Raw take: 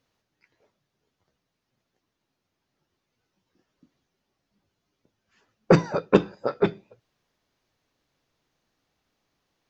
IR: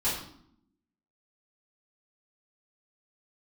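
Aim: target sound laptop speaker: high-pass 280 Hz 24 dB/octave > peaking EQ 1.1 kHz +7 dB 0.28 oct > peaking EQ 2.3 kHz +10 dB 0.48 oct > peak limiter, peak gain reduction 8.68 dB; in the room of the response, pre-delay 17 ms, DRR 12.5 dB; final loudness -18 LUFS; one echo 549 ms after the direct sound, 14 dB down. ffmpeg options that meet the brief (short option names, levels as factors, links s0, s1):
-filter_complex "[0:a]aecho=1:1:549:0.2,asplit=2[s0][s1];[1:a]atrim=start_sample=2205,adelay=17[s2];[s1][s2]afir=irnorm=-1:irlink=0,volume=0.0841[s3];[s0][s3]amix=inputs=2:normalize=0,highpass=f=280:w=0.5412,highpass=f=280:w=1.3066,equalizer=f=1100:t=o:w=0.28:g=7,equalizer=f=2300:t=o:w=0.48:g=10,volume=3.35,alimiter=limit=0.891:level=0:latency=1"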